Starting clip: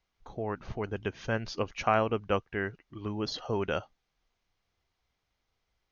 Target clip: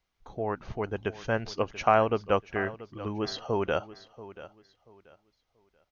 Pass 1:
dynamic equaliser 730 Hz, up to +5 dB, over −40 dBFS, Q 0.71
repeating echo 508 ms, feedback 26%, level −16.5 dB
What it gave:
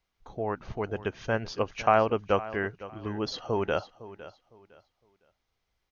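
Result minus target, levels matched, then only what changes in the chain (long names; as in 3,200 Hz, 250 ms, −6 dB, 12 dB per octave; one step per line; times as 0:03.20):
echo 176 ms early
change: repeating echo 684 ms, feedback 26%, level −16.5 dB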